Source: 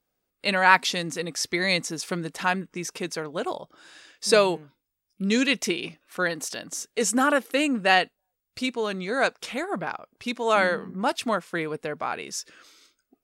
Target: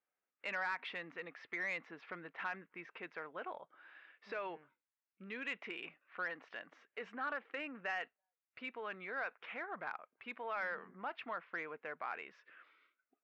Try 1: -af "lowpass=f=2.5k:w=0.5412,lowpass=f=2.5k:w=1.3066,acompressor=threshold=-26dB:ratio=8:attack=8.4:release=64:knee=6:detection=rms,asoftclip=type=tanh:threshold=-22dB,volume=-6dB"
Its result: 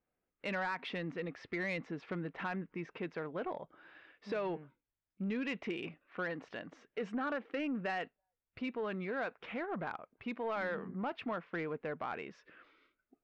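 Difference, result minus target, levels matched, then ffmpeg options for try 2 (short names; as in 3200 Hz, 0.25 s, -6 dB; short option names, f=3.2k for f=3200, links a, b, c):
2000 Hz band -4.0 dB
-af "lowpass=f=2.5k:w=0.5412,lowpass=f=2.5k:w=1.3066,acompressor=threshold=-26dB:ratio=8:attack=8.4:release=64:knee=6:detection=rms,bandpass=f=1.8k:t=q:w=0.76:csg=0,asoftclip=type=tanh:threshold=-22dB,volume=-6dB"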